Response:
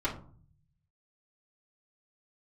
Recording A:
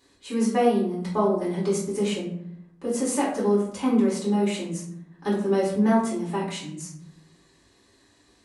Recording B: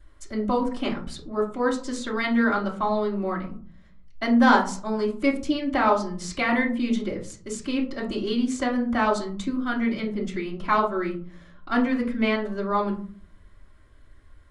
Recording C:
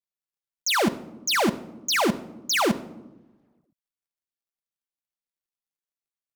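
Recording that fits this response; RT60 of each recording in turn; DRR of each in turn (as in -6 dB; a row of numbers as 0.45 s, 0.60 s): B; 0.70 s, 0.45 s, 1.1 s; -7.0 dB, -9.0 dB, 8.0 dB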